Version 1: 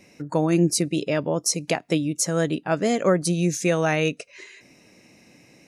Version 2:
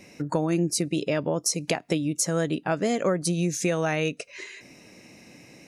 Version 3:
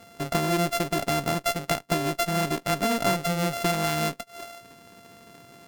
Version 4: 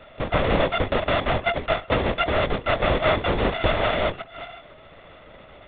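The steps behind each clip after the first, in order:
compression 3:1, threshold -27 dBFS, peak gain reduction 10 dB; trim +3.5 dB
sorted samples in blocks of 64 samples; Chebyshev shaper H 8 -26 dB, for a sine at -9.5 dBFS
on a send at -15.5 dB: reverberation, pre-delay 56 ms; on the sum: LPC vocoder at 8 kHz whisper; trim +4 dB

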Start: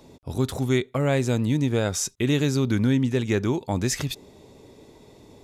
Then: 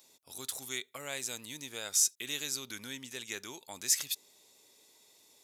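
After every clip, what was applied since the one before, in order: differentiator; trim +2 dB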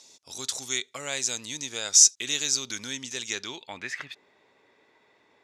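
low-pass sweep 6.2 kHz -> 1.7 kHz, 3.28–3.95 s; trim +6 dB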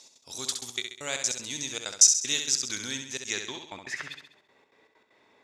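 trance gate "x.xxxxx.x.xx.xx." 194 bpm -60 dB; on a send: flutter echo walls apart 11.4 m, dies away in 0.61 s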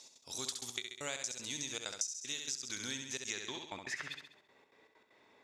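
compression 16:1, threshold -32 dBFS, peak gain reduction 21 dB; trim -3 dB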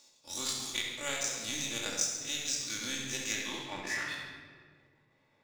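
every event in the spectrogram widened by 60 ms; power-law waveshaper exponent 1.4; simulated room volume 2200 m³, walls mixed, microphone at 2.4 m; trim +3 dB

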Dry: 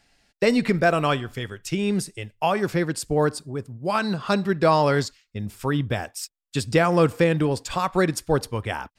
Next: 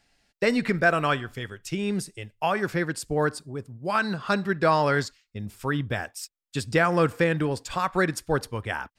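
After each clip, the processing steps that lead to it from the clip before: dynamic bell 1.6 kHz, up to +7 dB, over -39 dBFS, Q 1.7; trim -4 dB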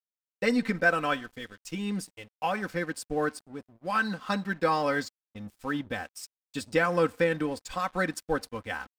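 comb 3.9 ms, depth 71%; crossover distortion -45.5 dBFS; trim -5 dB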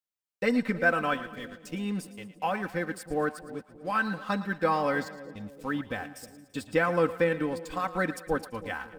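dynamic bell 5.8 kHz, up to -7 dB, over -51 dBFS, Q 0.8; two-band feedback delay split 570 Hz, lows 316 ms, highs 112 ms, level -14.5 dB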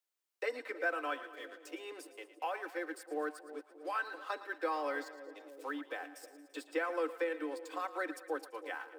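steep high-pass 290 Hz 96 dB/octave; three bands compressed up and down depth 40%; trim -8.5 dB

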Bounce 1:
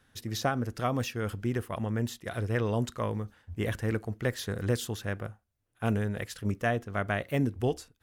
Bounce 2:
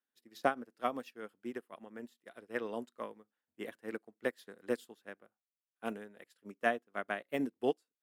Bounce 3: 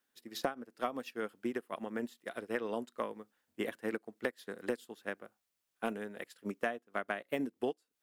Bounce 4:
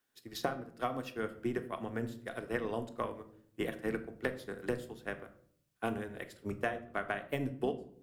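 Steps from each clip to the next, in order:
high-pass 230 Hz 24 dB/octave; peaking EQ 6.1 kHz -7 dB 0.26 oct; upward expansion 2.5:1, over -44 dBFS; trim +1 dB
compression 8:1, threshold -43 dBFS, peak gain reduction 19 dB; trim +11 dB
octave divider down 1 oct, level -5 dB; on a send at -8 dB: reverberation RT60 0.60 s, pre-delay 3 ms

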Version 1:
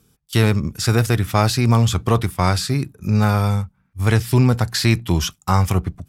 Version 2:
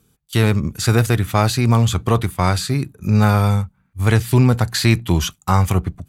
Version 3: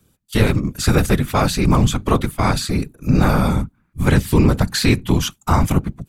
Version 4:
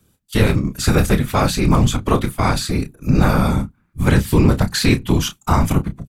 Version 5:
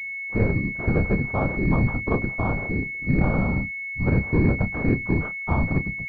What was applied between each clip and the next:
level rider; band-stop 5.3 kHz, Q 7.6; trim -1 dB
whisper effect
doubling 30 ms -10 dB
class-D stage that switches slowly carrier 2.2 kHz; trim -6.5 dB

